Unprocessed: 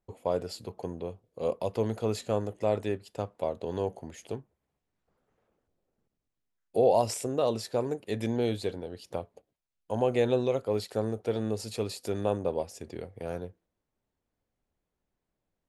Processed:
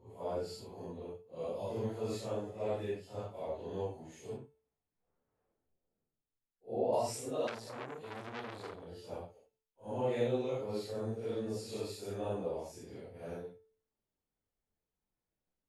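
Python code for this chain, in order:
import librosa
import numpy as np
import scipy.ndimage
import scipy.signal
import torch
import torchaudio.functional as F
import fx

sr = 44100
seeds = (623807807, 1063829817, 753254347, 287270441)

y = fx.phase_scramble(x, sr, seeds[0], window_ms=200)
y = fx.lowpass(y, sr, hz=fx.line((4.36, 2700.0), (6.92, 1300.0)), slope=6, at=(4.36, 6.92), fade=0.02)
y = fx.comb_fb(y, sr, f0_hz=440.0, decay_s=0.53, harmonics='all', damping=0.0, mix_pct=60)
y = fx.transformer_sat(y, sr, knee_hz=2500.0, at=(7.47, 8.87))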